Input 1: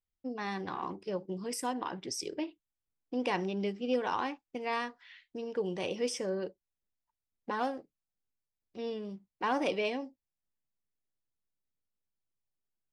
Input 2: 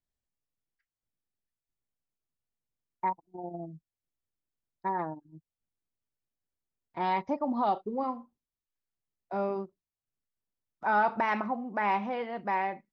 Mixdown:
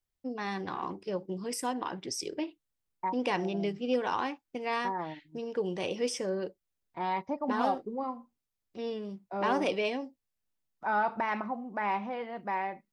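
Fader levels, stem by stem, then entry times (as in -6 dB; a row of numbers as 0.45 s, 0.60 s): +1.5 dB, -3.0 dB; 0.00 s, 0.00 s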